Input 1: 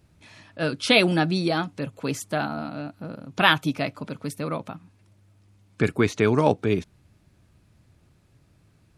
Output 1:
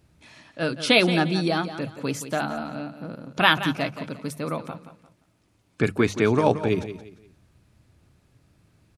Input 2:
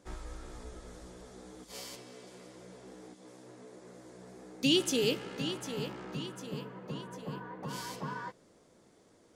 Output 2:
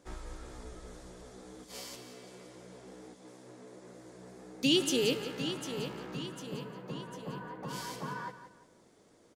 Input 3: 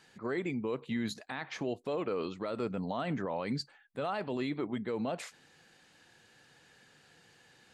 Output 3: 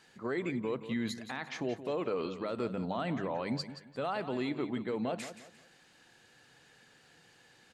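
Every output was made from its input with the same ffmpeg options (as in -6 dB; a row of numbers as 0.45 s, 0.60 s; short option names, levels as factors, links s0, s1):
-filter_complex "[0:a]bandreject=f=50:t=h:w=6,bandreject=f=100:t=h:w=6,bandreject=f=150:t=h:w=6,bandreject=f=200:t=h:w=6,asplit=2[s0][s1];[s1]aecho=0:1:175|350|525:0.251|0.0779|0.0241[s2];[s0][s2]amix=inputs=2:normalize=0"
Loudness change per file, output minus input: 0.0 LU, 0.0 LU, 0.0 LU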